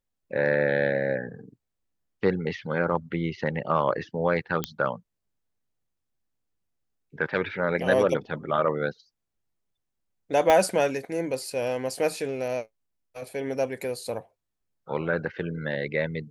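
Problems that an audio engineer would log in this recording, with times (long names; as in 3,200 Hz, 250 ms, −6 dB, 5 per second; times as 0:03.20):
0:04.64: click −10 dBFS
0:10.50: click −8 dBFS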